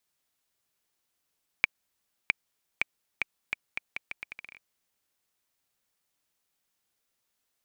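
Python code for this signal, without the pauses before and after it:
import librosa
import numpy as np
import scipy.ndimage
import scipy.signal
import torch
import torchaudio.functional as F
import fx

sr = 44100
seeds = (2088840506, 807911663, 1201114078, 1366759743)

y = fx.bouncing_ball(sr, first_gap_s=0.66, ratio=0.78, hz=2340.0, decay_ms=16.0, level_db=-6.0)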